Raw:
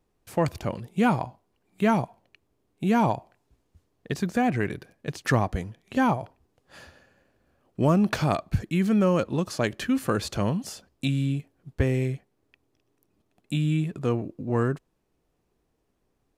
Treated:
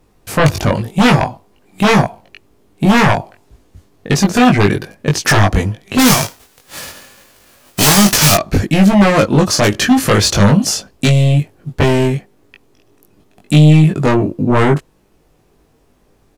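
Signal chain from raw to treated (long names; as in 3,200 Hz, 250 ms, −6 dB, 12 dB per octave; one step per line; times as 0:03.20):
0:05.98–0:08.34: spectral envelope flattened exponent 0.3
dynamic equaliser 5,800 Hz, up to +7 dB, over −51 dBFS, Q 2.4
sine wavefolder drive 14 dB, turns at −6.5 dBFS
double-tracking delay 20 ms −2.5 dB
level −1 dB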